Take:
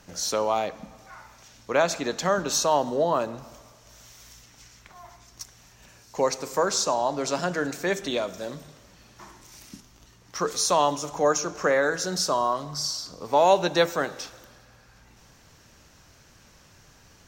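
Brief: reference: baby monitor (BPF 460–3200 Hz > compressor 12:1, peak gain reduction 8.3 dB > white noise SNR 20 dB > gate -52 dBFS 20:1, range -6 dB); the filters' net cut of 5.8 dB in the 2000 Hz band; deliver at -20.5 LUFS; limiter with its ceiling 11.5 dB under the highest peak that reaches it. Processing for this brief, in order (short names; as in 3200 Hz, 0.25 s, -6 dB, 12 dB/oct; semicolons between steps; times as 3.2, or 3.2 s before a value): bell 2000 Hz -7.5 dB; limiter -20 dBFS; BPF 460–3200 Hz; compressor 12:1, threshold -33 dBFS; white noise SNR 20 dB; gate -52 dBFS 20:1, range -6 dB; gain +18.5 dB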